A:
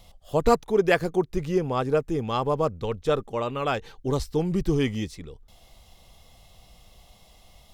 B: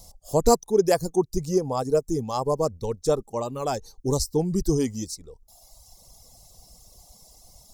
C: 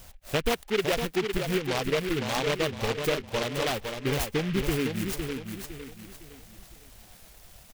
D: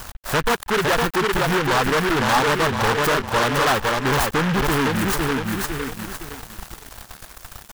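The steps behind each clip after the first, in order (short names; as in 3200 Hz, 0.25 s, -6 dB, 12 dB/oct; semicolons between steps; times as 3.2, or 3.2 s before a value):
resonant high shelf 4400 Hz +9.5 dB, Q 1.5; reverb removal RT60 1.3 s; band shelf 2100 Hz -11 dB; gain +2 dB
compressor 3:1, threshold -25 dBFS, peak gain reduction 10 dB; on a send: feedback echo 0.509 s, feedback 36%, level -6 dB; on the sum: noise-modulated delay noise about 2100 Hz, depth 0.16 ms
sample leveller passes 5; band shelf 1200 Hz +9 dB 1.3 oct; crossover distortion -40.5 dBFS; gain -3.5 dB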